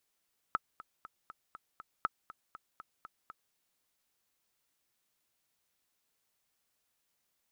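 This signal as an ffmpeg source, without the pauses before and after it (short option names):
-f lavfi -i "aevalsrc='pow(10,(-16.5-17.5*gte(mod(t,6*60/240),60/240))/20)*sin(2*PI*1300*mod(t,60/240))*exp(-6.91*mod(t,60/240)/0.03)':d=3:s=44100"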